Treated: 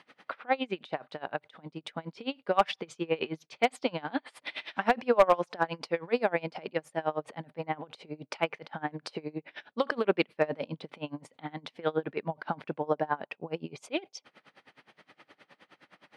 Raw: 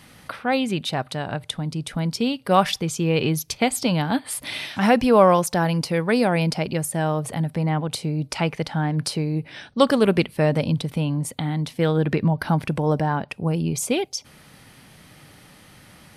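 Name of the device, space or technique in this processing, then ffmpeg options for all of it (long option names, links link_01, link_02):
helicopter radio: -af "highpass=380,lowpass=2900,aeval=exprs='val(0)*pow(10,-26*(0.5-0.5*cos(2*PI*9.6*n/s))/20)':channel_layout=same,asoftclip=type=hard:threshold=-11.5dB"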